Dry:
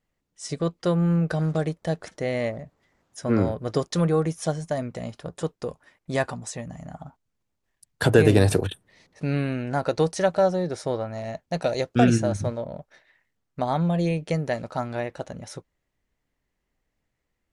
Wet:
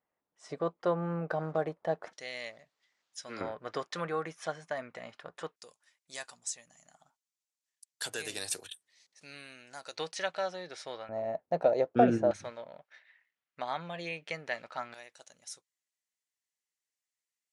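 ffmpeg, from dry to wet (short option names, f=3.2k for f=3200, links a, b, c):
-af "asetnsamples=n=441:p=0,asendcmd='2.13 bandpass f 4300;3.41 bandpass f 1700;5.56 bandpass f 7100;9.96 bandpass f 2800;11.09 bandpass f 610;12.31 bandpass f 2300;14.94 bandpass f 7800',bandpass=f=870:t=q:w=1.1:csg=0"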